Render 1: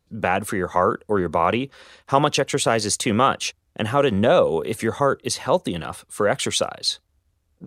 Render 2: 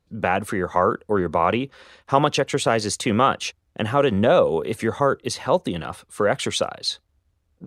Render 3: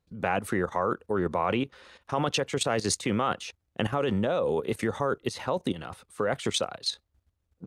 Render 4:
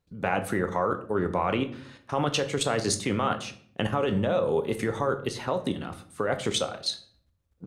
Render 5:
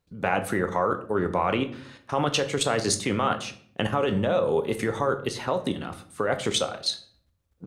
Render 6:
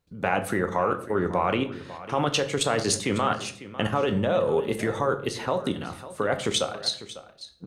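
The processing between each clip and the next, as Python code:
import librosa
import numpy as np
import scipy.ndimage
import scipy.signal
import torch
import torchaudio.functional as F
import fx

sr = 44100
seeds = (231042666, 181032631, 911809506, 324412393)

y1 = fx.high_shelf(x, sr, hz=6000.0, db=-7.5)
y2 = fx.level_steps(y1, sr, step_db=13)
y3 = fx.room_shoebox(y2, sr, seeds[0], volume_m3=77.0, walls='mixed', distance_m=0.33)
y4 = fx.low_shelf(y3, sr, hz=330.0, db=-2.5)
y4 = y4 * 10.0 ** (2.5 / 20.0)
y5 = y4 + 10.0 ** (-15.5 / 20.0) * np.pad(y4, (int(549 * sr / 1000.0), 0))[:len(y4)]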